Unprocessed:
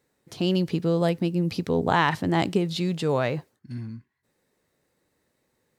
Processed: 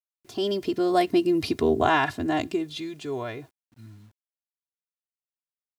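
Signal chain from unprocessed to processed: Doppler pass-by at 1.29 s, 29 m/s, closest 13 m; comb 2.9 ms, depth 87%; bit crusher 11-bit; trim +3 dB

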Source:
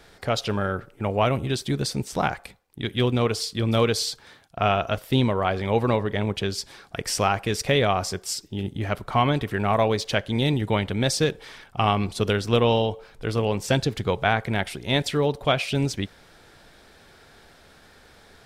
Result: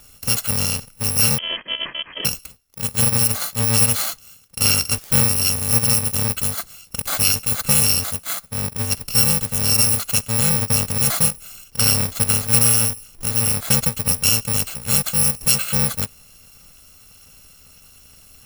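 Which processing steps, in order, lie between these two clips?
bit-reversed sample order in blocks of 128 samples; 1.38–2.25 s: frequency inversion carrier 3.2 kHz; trim +4.5 dB

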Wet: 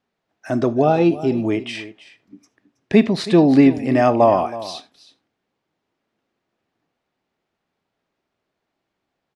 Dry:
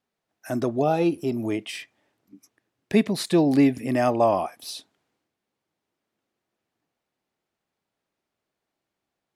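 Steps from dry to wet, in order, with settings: distance through air 100 m; delay 323 ms -16 dB; on a send at -15 dB: reverberation, pre-delay 3 ms; on the sum: trim +6.5 dB

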